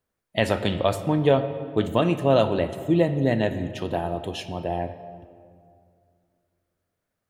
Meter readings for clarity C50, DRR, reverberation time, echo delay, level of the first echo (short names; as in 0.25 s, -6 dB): 11.0 dB, 10.0 dB, 2.3 s, none, none